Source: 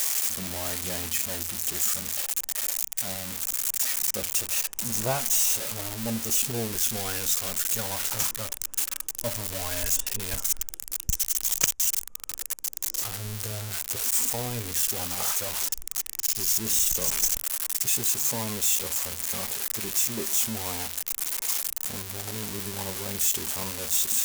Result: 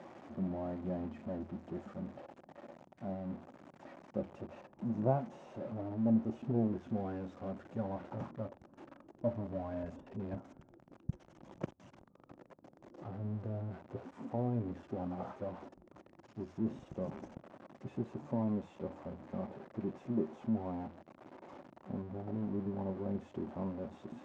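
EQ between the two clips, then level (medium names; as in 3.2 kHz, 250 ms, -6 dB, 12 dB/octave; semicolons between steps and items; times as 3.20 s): Butterworth band-pass 280 Hz, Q 0.63; distance through air 68 m; peaking EQ 450 Hz -13.5 dB 0.21 oct; +3.0 dB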